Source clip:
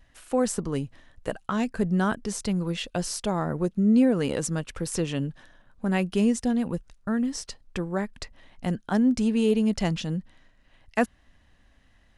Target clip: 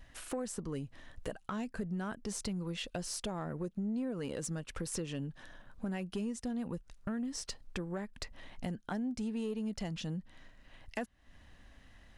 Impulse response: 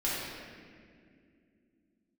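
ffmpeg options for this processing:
-af "acompressor=threshold=-38dB:ratio=5,asoftclip=type=tanh:threshold=-29.5dB,volume=2.5dB"

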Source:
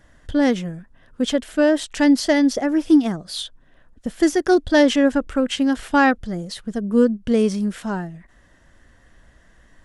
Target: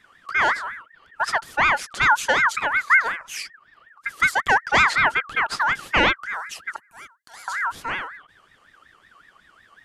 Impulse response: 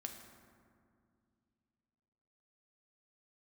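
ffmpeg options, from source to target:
-filter_complex "[0:a]asettb=1/sr,asplit=3[a][b][c];[a]atrim=end=6.764[d];[b]atrim=start=6.76:end=7.48,asetpts=PTS-STARTPTS,afade=t=in:d=0.004:c=qsin,afade=t=out:st=0.716:d=0.004:c=qsin,aderivative[e];[c]atrim=start=7.476[f];[d][e]acrossfade=d=0.004:c1=hsin:c2=qsin[g];[g][f]acrossfade=d=0.004:c1=qsin:c2=hsin,aeval=exprs='val(0)*sin(2*PI*1500*n/s+1500*0.25/5.4*sin(2*PI*5.4*n/s))':c=same"

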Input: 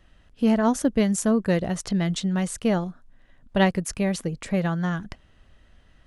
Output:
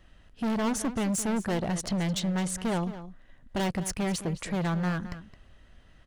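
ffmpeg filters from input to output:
-filter_complex "[0:a]asoftclip=type=hard:threshold=-26dB,asplit=2[a][b];[b]adelay=215.7,volume=-13dB,highshelf=f=4k:g=-4.85[c];[a][c]amix=inputs=2:normalize=0"

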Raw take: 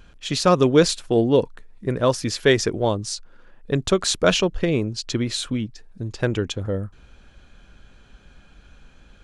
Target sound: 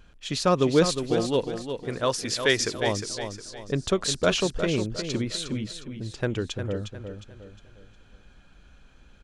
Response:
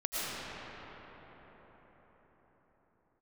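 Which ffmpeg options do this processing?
-filter_complex "[0:a]asettb=1/sr,asplit=3[a][b][c];[a]atrim=end=1.144[d];[b]atrim=start=1.14:end=2.87,asetpts=PTS-STARTPTS,afade=t=in:d=0.004:c=qsin,afade=t=out:st=1.726:d=0.004:c=qsin,tiltshelf=f=770:g=-5[e];[c]atrim=start=2.866[f];[d][e]acrossfade=d=0.004:c1=hsin:c2=qsin[g];[g][f]acrossfade=d=0.004:c1=qsin:c2=hsin,aecho=1:1:358|716|1074|1432:0.398|0.151|0.0575|0.0218,volume=-5dB"

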